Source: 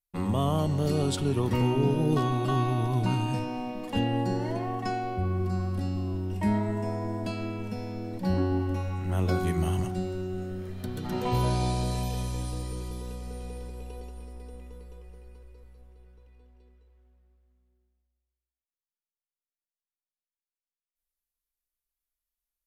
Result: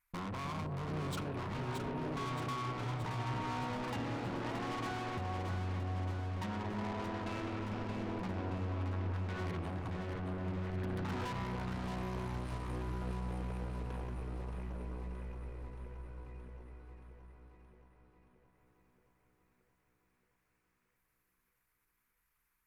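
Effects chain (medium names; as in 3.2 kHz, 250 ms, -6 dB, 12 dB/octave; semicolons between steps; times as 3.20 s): resonances exaggerated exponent 1.5; high-order bell 1.5 kHz +15.5 dB; compression 8:1, threshold -34 dBFS, peak gain reduction 15 dB; valve stage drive 48 dB, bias 0.55; on a send: echo whose repeats swap between lows and highs 312 ms, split 920 Hz, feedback 80%, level -4 dB; on the sum: trim +9 dB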